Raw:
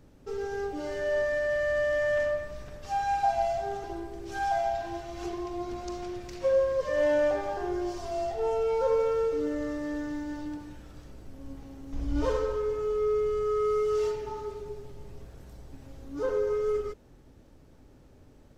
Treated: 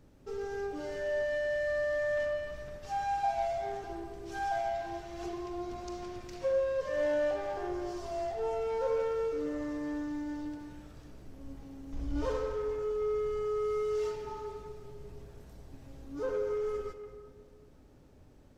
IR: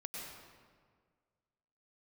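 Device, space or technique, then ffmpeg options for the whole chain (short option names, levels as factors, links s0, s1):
saturated reverb return: -filter_complex "[0:a]asettb=1/sr,asplit=3[s0][s1][s2];[s0]atrim=end=0.854[s3];[s1]atrim=start=0.85:end=1.68,asetpts=PTS-STARTPTS,afade=t=in:d=0.004:c=qsin,afade=t=out:st=0.826:d=0.004:c=qsin,bandreject=f=1200:w=13[s4];[s2]atrim=start=1.676[s5];[s3][s4]acrossfade=d=0.004:c1=hsin:c2=qsin[s6];[s6][s5]acrossfade=d=0.004:c1=qsin:c2=hsin,asplit=2[s7][s8];[1:a]atrim=start_sample=2205[s9];[s8][s9]afir=irnorm=-1:irlink=0,asoftclip=type=tanh:threshold=0.0251,volume=0.841[s10];[s7][s10]amix=inputs=2:normalize=0,volume=0.447"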